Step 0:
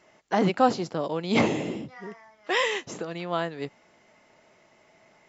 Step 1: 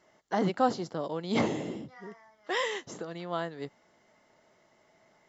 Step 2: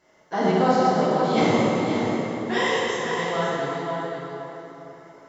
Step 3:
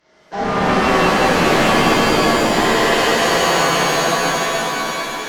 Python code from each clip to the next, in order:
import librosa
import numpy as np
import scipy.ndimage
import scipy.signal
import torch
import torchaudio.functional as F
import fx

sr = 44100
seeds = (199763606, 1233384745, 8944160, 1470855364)

y1 = fx.peak_eq(x, sr, hz=2500.0, db=-10.0, octaves=0.24)
y1 = F.gain(torch.from_numpy(y1), -5.0).numpy()
y2 = y1 + 10.0 ** (-7.5 / 20.0) * np.pad(y1, (int(530 * sr / 1000.0), 0))[:len(y1)]
y2 = fx.rev_plate(y2, sr, seeds[0], rt60_s=3.7, hf_ratio=0.6, predelay_ms=0, drr_db=-9.0)
y3 = fx.cvsd(y2, sr, bps=32000)
y3 = fx.fold_sine(y3, sr, drive_db=10, ceiling_db=-7.5)
y3 = fx.rev_shimmer(y3, sr, seeds[1], rt60_s=3.6, semitones=7, shimmer_db=-2, drr_db=-6.5)
y3 = F.gain(torch.from_numpy(y3), -12.5).numpy()